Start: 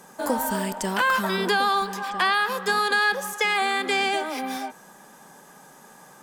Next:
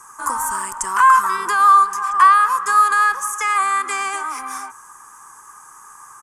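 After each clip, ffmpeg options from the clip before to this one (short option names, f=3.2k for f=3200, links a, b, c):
-af "firequalizer=gain_entry='entry(110,0);entry(170,-24);entry(340,-12);entry(600,-23);entry(1100,12);entry(1600,-2);entry(3800,-17);entry(6400,4);entry(10000,6);entry(15000,-16)':delay=0.05:min_phase=1,volume=5dB"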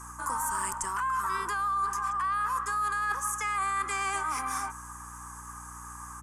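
-af "alimiter=limit=-12dB:level=0:latency=1:release=14,areverse,acompressor=threshold=-26dB:ratio=6,areverse,aeval=exprs='val(0)+0.00501*(sin(2*PI*60*n/s)+sin(2*PI*2*60*n/s)/2+sin(2*PI*3*60*n/s)/3+sin(2*PI*4*60*n/s)/4+sin(2*PI*5*60*n/s)/5)':c=same,volume=-2dB"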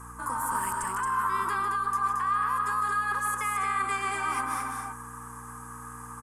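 -af "equalizer=f=100:t=o:w=0.67:g=6,equalizer=f=250:t=o:w=0.67:g=4,equalizer=f=6.3k:t=o:w=0.67:g=-11,aeval=exprs='val(0)+0.000891*sin(2*PI*460*n/s)':c=same,aecho=1:1:154.5|224.5:0.447|0.631"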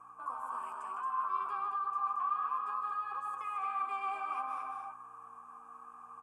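-filter_complex "[0:a]asplit=3[a][b][c];[a]bandpass=f=730:t=q:w=8,volume=0dB[d];[b]bandpass=f=1.09k:t=q:w=8,volume=-6dB[e];[c]bandpass=f=2.44k:t=q:w=8,volume=-9dB[f];[d][e][f]amix=inputs=3:normalize=0,flanger=delay=9.8:depth=2.9:regen=-39:speed=0.61:shape=sinusoidal,volume=5.5dB"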